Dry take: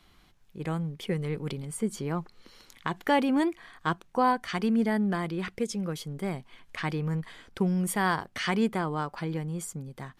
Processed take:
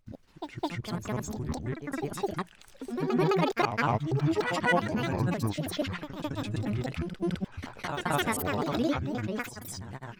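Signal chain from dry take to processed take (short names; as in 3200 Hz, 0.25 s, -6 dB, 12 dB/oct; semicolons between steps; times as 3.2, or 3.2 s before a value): slices in reverse order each 0.12 s, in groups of 5; grains, pitch spread up and down by 12 st; reverse echo 0.211 s -7 dB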